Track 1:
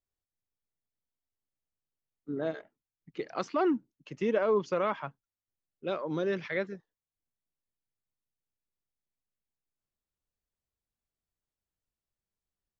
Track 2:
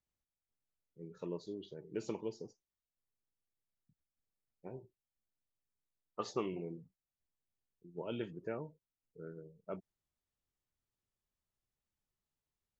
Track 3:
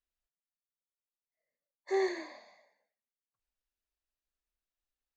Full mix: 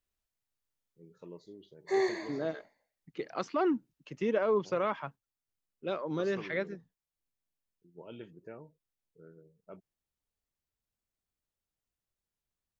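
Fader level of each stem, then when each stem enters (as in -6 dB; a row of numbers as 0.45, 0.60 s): -1.5, -6.5, +1.5 dB; 0.00, 0.00, 0.00 s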